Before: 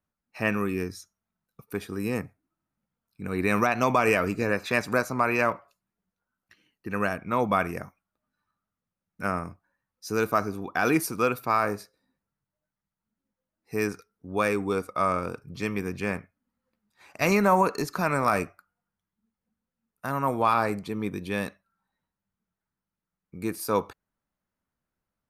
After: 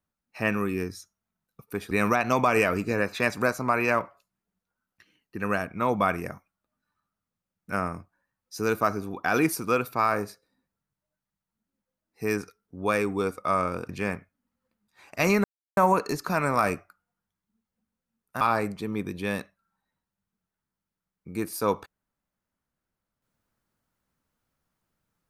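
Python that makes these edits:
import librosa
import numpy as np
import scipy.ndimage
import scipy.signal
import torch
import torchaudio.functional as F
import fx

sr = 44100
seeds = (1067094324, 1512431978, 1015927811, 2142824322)

y = fx.edit(x, sr, fx.cut(start_s=1.91, length_s=1.51),
    fx.cut(start_s=15.4, length_s=0.51),
    fx.insert_silence(at_s=17.46, length_s=0.33),
    fx.cut(start_s=20.1, length_s=0.38), tone=tone)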